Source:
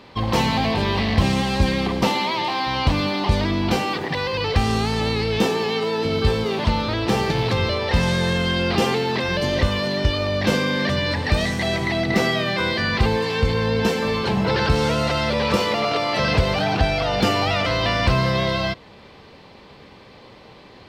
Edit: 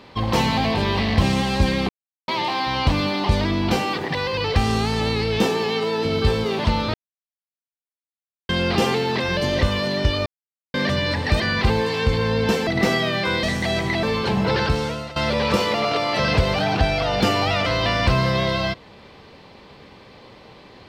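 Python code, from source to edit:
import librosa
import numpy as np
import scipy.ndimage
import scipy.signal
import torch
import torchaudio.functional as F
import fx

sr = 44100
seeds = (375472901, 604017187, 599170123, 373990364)

y = fx.edit(x, sr, fx.silence(start_s=1.89, length_s=0.39),
    fx.silence(start_s=6.94, length_s=1.55),
    fx.silence(start_s=10.26, length_s=0.48),
    fx.swap(start_s=11.4, length_s=0.6, other_s=12.76, other_length_s=1.27),
    fx.fade_out_to(start_s=14.56, length_s=0.6, floor_db=-18.0), tone=tone)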